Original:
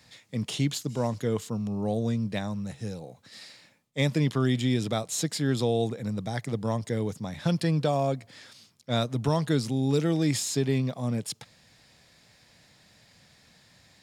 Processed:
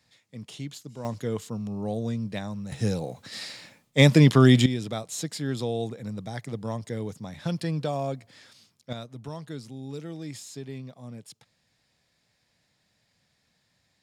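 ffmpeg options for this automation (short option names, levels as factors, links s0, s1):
-af "asetnsamples=n=441:p=0,asendcmd='1.05 volume volume -2dB;2.72 volume volume 9dB;4.66 volume volume -3.5dB;8.93 volume volume -12.5dB',volume=0.316"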